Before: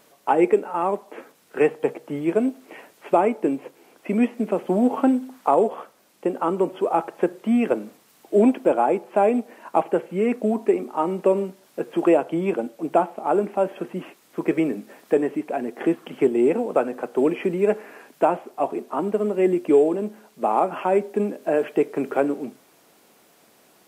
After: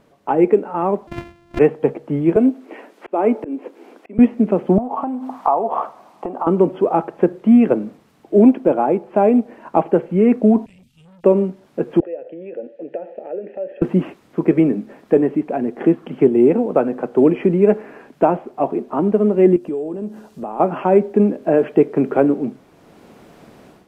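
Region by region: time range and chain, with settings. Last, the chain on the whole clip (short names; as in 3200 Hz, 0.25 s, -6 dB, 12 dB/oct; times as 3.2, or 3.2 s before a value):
1.07–1.59 sample sorter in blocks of 128 samples + dynamic EQ 2300 Hz, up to +7 dB, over -59 dBFS, Q 1.4
2.36–4.19 steep high-pass 230 Hz + auto swell 0.473 s
4.78–6.47 HPF 290 Hz 6 dB/oct + compressor 4:1, threshold -35 dBFS + band shelf 890 Hz +12.5 dB 1.1 oct
10.66–11.24 elliptic band-stop 120–3000 Hz, stop band 50 dB + core saturation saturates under 2100 Hz
12–13.82 compressor 8:1, threshold -25 dBFS + vowel filter e
19.56–20.6 tone controls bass 0 dB, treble +8 dB + notch 2200 Hz, Q 8.2 + compressor 2:1, threshold -41 dBFS
whole clip: RIAA curve playback; AGC; gain -1 dB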